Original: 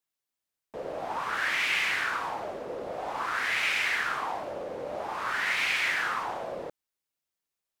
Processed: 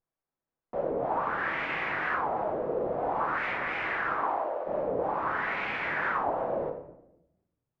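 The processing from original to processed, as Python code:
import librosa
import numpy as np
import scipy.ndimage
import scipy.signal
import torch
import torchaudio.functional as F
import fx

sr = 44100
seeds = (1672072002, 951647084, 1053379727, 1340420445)

y = fx.highpass(x, sr, hz=fx.line((4.12, 170.0), (4.66, 610.0)), slope=24, at=(4.12, 4.66), fade=0.02)
y = fx.vibrato(y, sr, rate_hz=0.94, depth_cents=48.0)
y = scipy.signal.sosfilt(scipy.signal.butter(2, 1100.0, 'lowpass', fs=sr, output='sos'), y)
y = fx.room_shoebox(y, sr, seeds[0], volume_m3=260.0, walls='mixed', distance_m=0.68)
y = fx.record_warp(y, sr, rpm=45.0, depth_cents=250.0)
y = y * librosa.db_to_amplitude(4.5)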